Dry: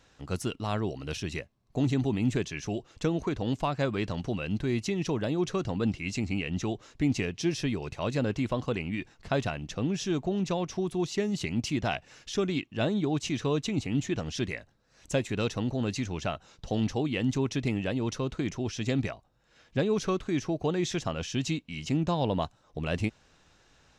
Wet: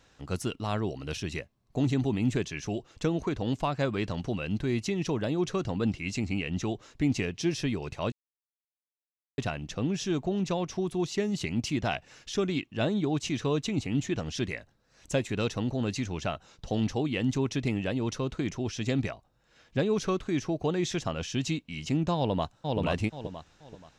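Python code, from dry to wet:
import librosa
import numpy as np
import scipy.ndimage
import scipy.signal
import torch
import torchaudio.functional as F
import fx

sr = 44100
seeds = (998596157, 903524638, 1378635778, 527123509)

y = fx.echo_throw(x, sr, start_s=22.16, length_s=0.63, ms=480, feedback_pct=30, wet_db=-2.0)
y = fx.edit(y, sr, fx.silence(start_s=8.12, length_s=1.26), tone=tone)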